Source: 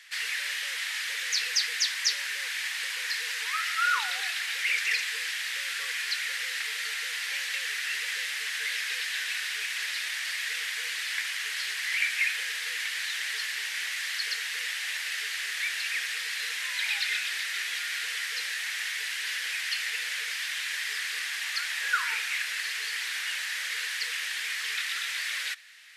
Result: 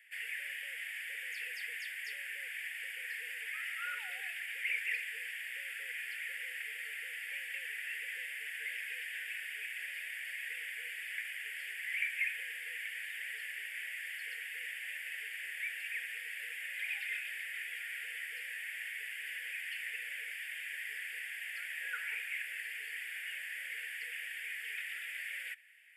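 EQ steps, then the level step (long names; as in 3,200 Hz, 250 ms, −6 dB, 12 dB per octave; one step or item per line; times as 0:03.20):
low-shelf EQ 350 Hz +5 dB
phaser with its sweep stopped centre 1,100 Hz, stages 6
phaser with its sweep stopped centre 2,600 Hz, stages 4
−6.0 dB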